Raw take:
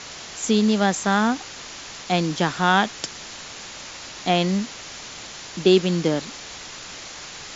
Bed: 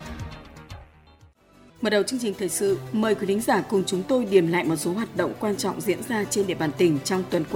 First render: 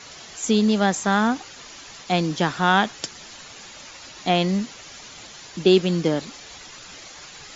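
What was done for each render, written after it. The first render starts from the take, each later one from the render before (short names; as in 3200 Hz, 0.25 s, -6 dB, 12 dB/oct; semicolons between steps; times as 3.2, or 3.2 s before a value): denoiser 8 dB, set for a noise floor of -38 dBFS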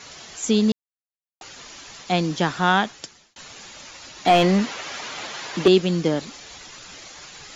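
0.72–1.41 mute; 2.69–3.36 fade out; 4.25–5.68 overdrive pedal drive 21 dB, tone 1600 Hz, clips at -4.5 dBFS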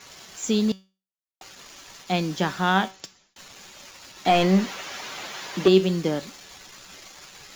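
in parallel at -6 dB: requantised 6-bit, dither none; on the sum: resonator 190 Hz, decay 0.32 s, harmonics all, mix 60%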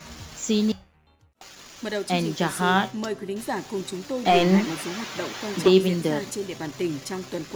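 add bed -7.5 dB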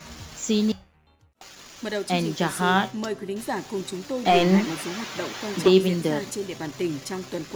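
nothing audible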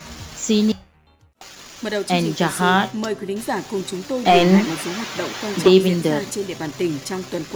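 gain +5 dB; limiter -3 dBFS, peak gain reduction 2 dB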